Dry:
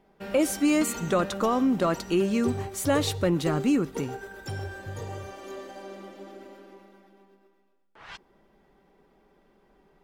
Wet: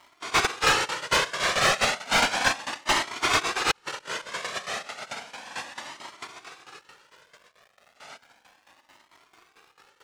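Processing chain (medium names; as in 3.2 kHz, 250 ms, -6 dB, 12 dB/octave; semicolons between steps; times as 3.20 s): formants replaced by sine waves; filtered feedback delay 260 ms, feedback 43%, level -21 dB; noise-vocoded speech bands 1; crackle 540 per s -50 dBFS; tremolo saw down 4.5 Hz, depth 80%; overdrive pedal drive 22 dB, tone 2.3 kHz, clips at -6.5 dBFS; 3.71–4.47 s: compressor with a negative ratio -37 dBFS, ratio -0.5; treble shelf 2.3 kHz -8 dB; Shepard-style flanger rising 0.33 Hz; trim +7 dB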